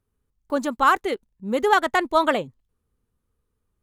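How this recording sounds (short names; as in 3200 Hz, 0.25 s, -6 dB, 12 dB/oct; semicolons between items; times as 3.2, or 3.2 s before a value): noise floor -77 dBFS; spectral tilt -1.5 dB/oct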